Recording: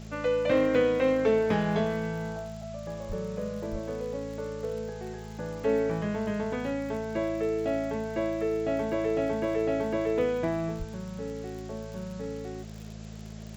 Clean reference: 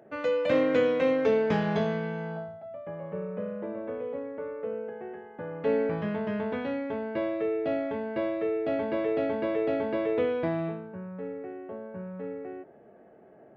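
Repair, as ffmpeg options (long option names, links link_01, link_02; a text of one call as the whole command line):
ffmpeg -i in.wav -filter_complex "[0:a]adeclick=threshold=4,bandreject=frequency=54.1:width_type=h:width=4,bandreject=frequency=108.2:width_type=h:width=4,bandreject=frequency=162.3:width_type=h:width=4,bandreject=frequency=216.4:width_type=h:width=4,asplit=3[link_01][link_02][link_03];[link_01]afade=type=out:start_time=3.08:duration=0.02[link_04];[link_02]highpass=frequency=140:width=0.5412,highpass=frequency=140:width=1.3066,afade=type=in:start_time=3.08:duration=0.02,afade=type=out:start_time=3.2:duration=0.02[link_05];[link_03]afade=type=in:start_time=3.2:duration=0.02[link_06];[link_04][link_05][link_06]amix=inputs=3:normalize=0,asplit=3[link_07][link_08][link_09];[link_07]afade=type=out:start_time=3.71:duration=0.02[link_10];[link_08]highpass=frequency=140:width=0.5412,highpass=frequency=140:width=1.3066,afade=type=in:start_time=3.71:duration=0.02,afade=type=out:start_time=3.83:duration=0.02[link_11];[link_09]afade=type=in:start_time=3.83:duration=0.02[link_12];[link_10][link_11][link_12]amix=inputs=3:normalize=0,asplit=3[link_13][link_14][link_15];[link_13]afade=type=out:start_time=10.78:duration=0.02[link_16];[link_14]highpass=frequency=140:width=0.5412,highpass=frequency=140:width=1.3066,afade=type=in:start_time=10.78:duration=0.02,afade=type=out:start_time=10.9:duration=0.02[link_17];[link_15]afade=type=in:start_time=10.9:duration=0.02[link_18];[link_16][link_17][link_18]amix=inputs=3:normalize=0,afwtdn=0.0025" out.wav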